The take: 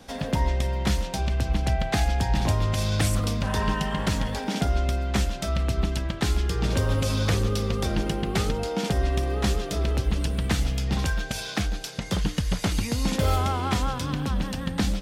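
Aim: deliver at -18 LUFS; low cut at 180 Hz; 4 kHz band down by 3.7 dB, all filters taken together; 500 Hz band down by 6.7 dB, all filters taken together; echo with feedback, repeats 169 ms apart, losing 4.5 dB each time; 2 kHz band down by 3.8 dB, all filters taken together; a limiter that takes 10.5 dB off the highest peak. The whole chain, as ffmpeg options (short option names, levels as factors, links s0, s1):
-af "highpass=180,equalizer=f=500:t=o:g=-8.5,equalizer=f=2000:t=o:g=-3.5,equalizer=f=4000:t=o:g=-3.5,alimiter=level_in=1.12:limit=0.0631:level=0:latency=1,volume=0.891,aecho=1:1:169|338|507|676|845|1014|1183|1352|1521:0.596|0.357|0.214|0.129|0.0772|0.0463|0.0278|0.0167|0.01,volume=5.96"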